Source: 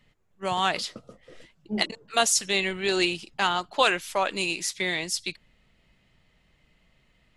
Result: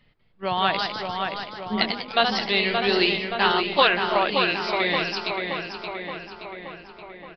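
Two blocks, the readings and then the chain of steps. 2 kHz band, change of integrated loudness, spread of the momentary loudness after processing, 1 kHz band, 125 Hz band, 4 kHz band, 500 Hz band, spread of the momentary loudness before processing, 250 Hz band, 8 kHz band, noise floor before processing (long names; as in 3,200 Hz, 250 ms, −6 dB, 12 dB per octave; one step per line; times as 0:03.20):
+4.5 dB, +3.0 dB, 17 LU, +5.0 dB, +4.5 dB, +4.0 dB, +5.0 dB, 9 LU, +4.5 dB, below −20 dB, −66 dBFS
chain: delay with pitch and tempo change per echo 195 ms, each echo +1 semitone, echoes 3, each echo −6 dB
downsampling to 11,025 Hz
feedback echo with a low-pass in the loop 574 ms, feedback 63%, low-pass 3,800 Hz, level −5 dB
level +2 dB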